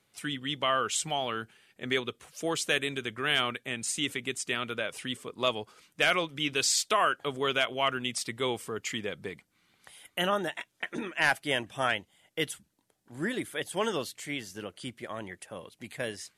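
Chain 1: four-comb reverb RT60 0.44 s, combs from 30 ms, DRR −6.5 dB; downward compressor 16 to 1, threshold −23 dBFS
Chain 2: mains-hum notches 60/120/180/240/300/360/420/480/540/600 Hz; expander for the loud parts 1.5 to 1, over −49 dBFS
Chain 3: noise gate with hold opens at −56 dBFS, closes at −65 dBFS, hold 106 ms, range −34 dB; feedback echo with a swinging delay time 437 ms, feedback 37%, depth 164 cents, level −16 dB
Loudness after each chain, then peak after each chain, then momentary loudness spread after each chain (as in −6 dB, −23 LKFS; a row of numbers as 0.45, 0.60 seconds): −28.0, −33.0, −30.5 LKFS; −12.0, −13.0, −12.5 dBFS; 9, 18, 15 LU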